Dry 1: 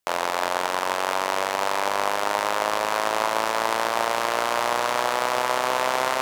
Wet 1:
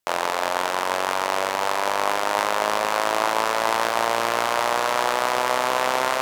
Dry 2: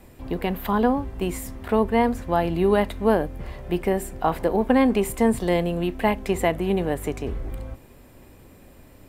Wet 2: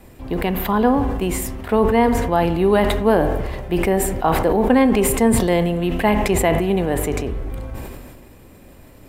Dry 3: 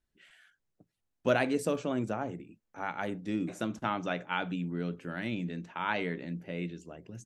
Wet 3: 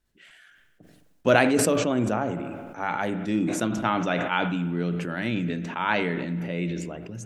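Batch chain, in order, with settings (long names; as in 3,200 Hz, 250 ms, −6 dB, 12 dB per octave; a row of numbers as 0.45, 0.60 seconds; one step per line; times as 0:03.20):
pitch vibrato 9.7 Hz 6.8 cents
floating-point word with a short mantissa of 8 bits
spring reverb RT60 1.2 s, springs 43/52 ms, chirp 60 ms, DRR 13 dB
level that may fall only so fast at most 32 dB per second
normalise the peak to −3 dBFS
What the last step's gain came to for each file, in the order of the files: 0.0, +3.0, +6.5 decibels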